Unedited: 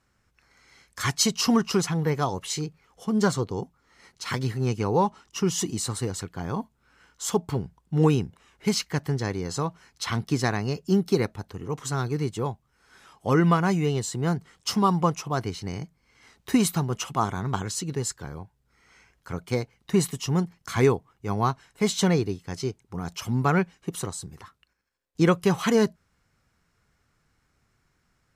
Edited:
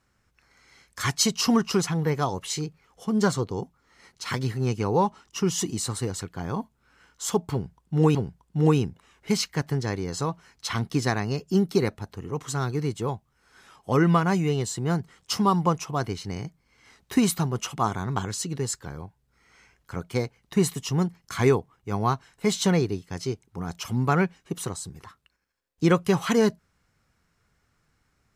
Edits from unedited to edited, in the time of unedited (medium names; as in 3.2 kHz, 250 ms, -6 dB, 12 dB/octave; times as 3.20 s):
7.52–8.15 s: loop, 2 plays